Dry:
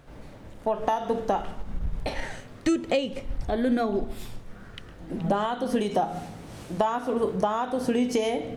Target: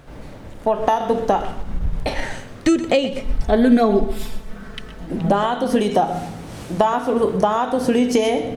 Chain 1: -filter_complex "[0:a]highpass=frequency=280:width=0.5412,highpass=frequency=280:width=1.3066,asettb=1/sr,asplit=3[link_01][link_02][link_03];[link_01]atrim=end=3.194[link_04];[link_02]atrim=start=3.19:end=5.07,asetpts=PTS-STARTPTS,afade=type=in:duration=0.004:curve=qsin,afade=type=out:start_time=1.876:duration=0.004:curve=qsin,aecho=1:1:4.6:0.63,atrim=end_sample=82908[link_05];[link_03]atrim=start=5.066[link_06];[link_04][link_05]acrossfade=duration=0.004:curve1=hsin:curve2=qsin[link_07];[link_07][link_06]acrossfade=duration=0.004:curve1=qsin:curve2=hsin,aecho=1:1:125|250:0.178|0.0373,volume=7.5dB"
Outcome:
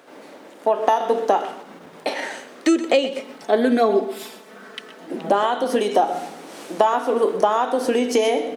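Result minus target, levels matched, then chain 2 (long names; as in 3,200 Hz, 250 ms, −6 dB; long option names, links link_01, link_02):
250 Hz band −4.0 dB
-filter_complex "[0:a]asettb=1/sr,asplit=3[link_01][link_02][link_03];[link_01]atrim=end=3.194[link_04];[link_02]atrim=start=3.19:end=5.07,asetpts=PTS-STARTPTS,afade=type=in:duration=0.004:curve=qsin,afade=type=out:start_time=1.876:duration=0.004:curve=qsin,aecho=1:1:4.6:0.63,atrim=end_sample=82908[link_05];[link_03]atrim=start=5.066[link_06];[link_04][link_05]acrossfade=duration=0.004:curve1=hsin:curve2=qsin[link_07];[link_07][link_06]acrossfade=duration=0.004:curve1=qsin:curve2=hsin,aecho=1:1:125|250:0.178|0.0373,volume=7.5dB"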